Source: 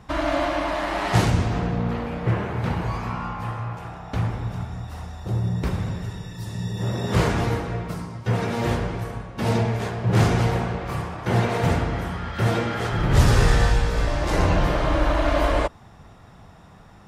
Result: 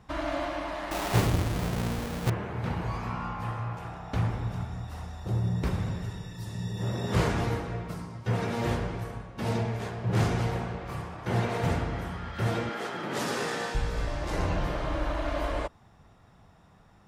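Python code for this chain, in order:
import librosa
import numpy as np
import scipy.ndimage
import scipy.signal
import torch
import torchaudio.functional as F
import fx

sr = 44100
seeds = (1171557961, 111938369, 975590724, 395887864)

y = fx.halfwave_hold(x, sr, at=(0.91, 2.3))
y = fx.highpass(y, sr, hz=210.0, slope=24, at=(12.69, 13.75))
y = fx.rider(y, sr, range_db=5, speed_s=2.0)
y = y * 10.0 ** (-8.0 / 20.0)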